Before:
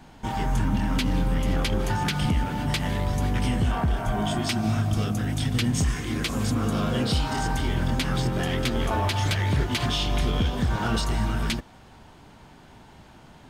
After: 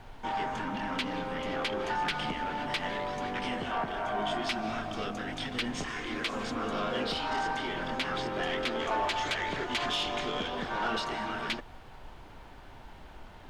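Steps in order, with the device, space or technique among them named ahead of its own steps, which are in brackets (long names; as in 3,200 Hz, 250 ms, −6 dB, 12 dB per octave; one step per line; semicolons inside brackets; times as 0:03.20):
aircraft cabin announcement (band-pass filter 400–3,700 Hz; soft clipping −22 dBFS, distortion −21 dB; brown noise bed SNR 14 dB)
0:08.79–0:10.48: parametric band 7,000 Hz +5.5 dB 0.42 octaves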